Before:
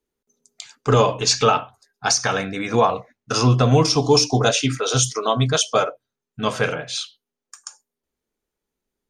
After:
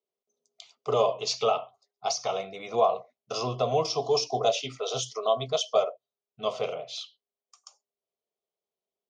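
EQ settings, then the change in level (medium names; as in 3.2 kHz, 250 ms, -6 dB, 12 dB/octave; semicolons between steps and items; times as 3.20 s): cabinet simulation 200–5800 Hz, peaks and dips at 270 Hz +10 dB, 390 Hz +6 dB, 660 Hz +9 dB, 1.2 kHz +5 dB, 2.1 kHz +4 dB, 3.1 kHz +5 dB; static phaser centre 680 Hz, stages 4; band-stop 880 Hz, Q 15; -9.0 dB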